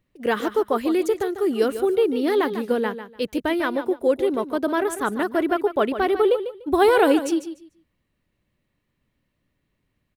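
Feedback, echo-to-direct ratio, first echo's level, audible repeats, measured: 20%, -11.0 dB, -11.0 dB, 2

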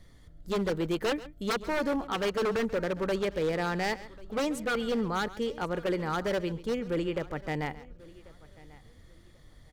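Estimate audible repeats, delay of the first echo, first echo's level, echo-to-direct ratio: 3, 136 ms, -17.0 dB, -15.5 dB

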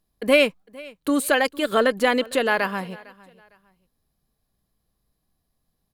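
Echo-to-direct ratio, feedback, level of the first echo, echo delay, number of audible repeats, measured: -22.0 dB, 29%, -22.5 dB, 455 ms, 2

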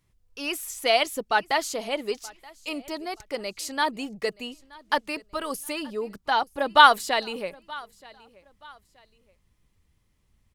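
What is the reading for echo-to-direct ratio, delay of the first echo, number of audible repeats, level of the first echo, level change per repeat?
-22.5 dB, 926 ms, 2, -23.0 dB, -9.5 dB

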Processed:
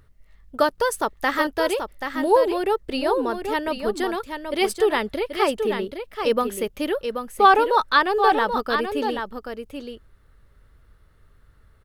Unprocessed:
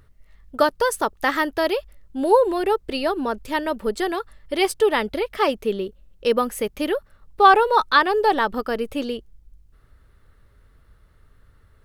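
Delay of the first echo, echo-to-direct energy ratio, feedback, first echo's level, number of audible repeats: 782 ms, -7.0 dB, no regular repeats, -7.0 dB, 1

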